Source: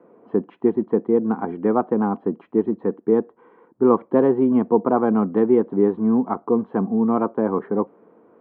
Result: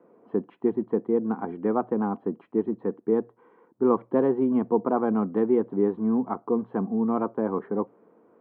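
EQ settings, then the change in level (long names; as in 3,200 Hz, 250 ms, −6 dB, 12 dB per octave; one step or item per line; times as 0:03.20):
mains-hum notches 60/120 Hz
−5.5 dB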